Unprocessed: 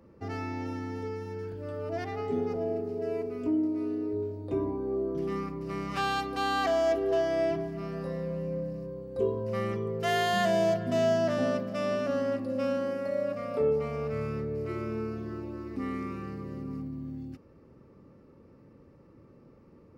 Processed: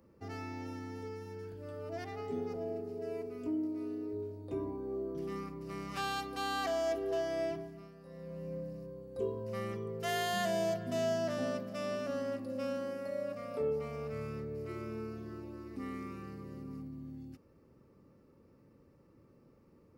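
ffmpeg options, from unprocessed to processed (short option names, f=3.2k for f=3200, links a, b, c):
-filter_complex "[0:a]asplit=3[a][b][c];[a]atrim=end=7.94,asetpts=PTS-STARTPTS,afade=t=out:st=7.45:d=0.49:silence=0.251189[d];[b]atrim=start=7.94:end=8.04,asetpts=PTS-STARTPTS,volume=-12dB[e];[c]atrim=start=8.04,asetpts=PTS-STARTPTS,afade=t=in:d=0.49:silence=0.251189[f];[d][e][f]concat=n=3:v=0:a=1,highshelf=f=5.9k:g=10.5,volume=-7.5dB"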